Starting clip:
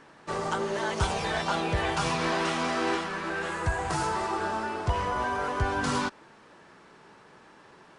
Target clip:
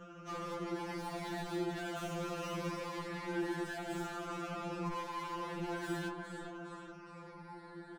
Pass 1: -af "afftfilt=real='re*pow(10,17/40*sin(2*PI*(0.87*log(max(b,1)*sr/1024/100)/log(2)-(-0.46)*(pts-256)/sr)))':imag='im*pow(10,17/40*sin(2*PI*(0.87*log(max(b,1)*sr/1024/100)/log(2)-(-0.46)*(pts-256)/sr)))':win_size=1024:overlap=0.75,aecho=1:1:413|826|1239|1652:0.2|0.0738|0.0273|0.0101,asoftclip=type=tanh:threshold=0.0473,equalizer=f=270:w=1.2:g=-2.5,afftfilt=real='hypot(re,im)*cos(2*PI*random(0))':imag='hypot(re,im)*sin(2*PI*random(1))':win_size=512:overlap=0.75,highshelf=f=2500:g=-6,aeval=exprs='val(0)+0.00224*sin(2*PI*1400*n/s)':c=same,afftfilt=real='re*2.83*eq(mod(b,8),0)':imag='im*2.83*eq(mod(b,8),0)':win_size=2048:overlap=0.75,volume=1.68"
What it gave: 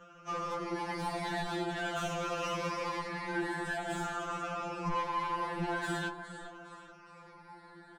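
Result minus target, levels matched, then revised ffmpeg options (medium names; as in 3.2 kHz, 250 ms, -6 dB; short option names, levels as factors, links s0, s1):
250 Hz band -4.5 dB; saturation: distortion -5 dB
-af "afftfilt=real='re*pow(10,17/40*sin(2*PI*(0.87*log(max(b,1)*sr/1024/100)/log(2)-(-0.46)*(pts-256)/sr)))':imag='im*pow(10,17/40*sin(2*PI*(0.87*log(max(b,1)*sr/1024/100)/log(2)-(-0.46)*(pts-256)/sr)))':win_size=1024:overlap=0.75,aecho=1:1:413|826|1239|1652:0.2|0.0738|0.0273|0.0101,asoftclip=type=tanh:threshold=0.015,equalizer=f=270:w=1.2:g=8.5,afftfilt=real='hypot(re,im)*cos(2*PI*random(0))':imag='hypot(re,im)*sin(2*PI*random(1))':win_size=512:overlap=0.75,highshelf=f=2500:g=-6,aeval=exprs='val(0)+0.00224*sin(2*PI*1400*n/s)':c=same,afftfilt=real='re*2.83*eq(mod(b,8),0)':imag='im*2.83*eq(mod(b,8),0)':win_size=2048:overlap=0.75,volume=1.68"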